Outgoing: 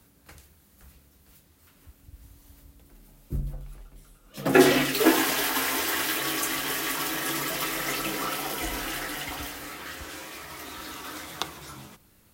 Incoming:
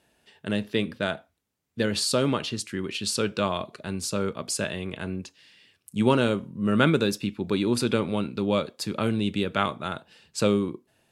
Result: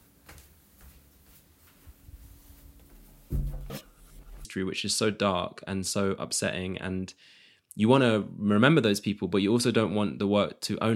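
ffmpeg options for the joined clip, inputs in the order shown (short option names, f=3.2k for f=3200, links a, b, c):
-filter_complex "[0:a]apad=whole_dur=10.95,atrim=end=10.95,asplit=2[a][b];[a]atrim=end=3.702[c];[b]atrim=start=3.698:end=4.452,asetpts=PTS-STARTPTS,areverse[d];[1:a]atrim=start=2.618:end=9.12[e];[c][d]acrossfade=d=0.004:c1=hsin:c2=hsin[f];[f][e]acrossfade=d=0.004:c1=hsin:c2=hsin"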